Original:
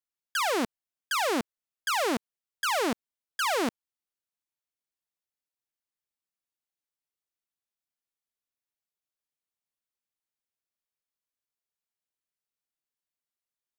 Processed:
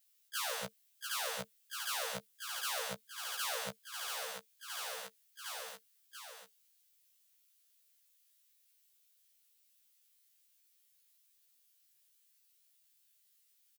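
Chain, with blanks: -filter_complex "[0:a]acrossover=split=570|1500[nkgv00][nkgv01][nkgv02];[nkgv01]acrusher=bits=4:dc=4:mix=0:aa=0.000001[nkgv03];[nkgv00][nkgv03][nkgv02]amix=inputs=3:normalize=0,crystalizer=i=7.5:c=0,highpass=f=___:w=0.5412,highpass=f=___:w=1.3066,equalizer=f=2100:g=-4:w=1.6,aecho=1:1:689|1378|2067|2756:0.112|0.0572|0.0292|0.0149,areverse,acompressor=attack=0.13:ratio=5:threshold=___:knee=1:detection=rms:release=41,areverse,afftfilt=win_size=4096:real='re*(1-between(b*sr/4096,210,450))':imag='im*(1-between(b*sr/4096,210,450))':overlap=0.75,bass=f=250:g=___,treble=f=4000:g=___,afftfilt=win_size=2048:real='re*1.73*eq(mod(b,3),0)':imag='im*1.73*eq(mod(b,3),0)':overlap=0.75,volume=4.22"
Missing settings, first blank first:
130, 130, 0.0178, -13, -10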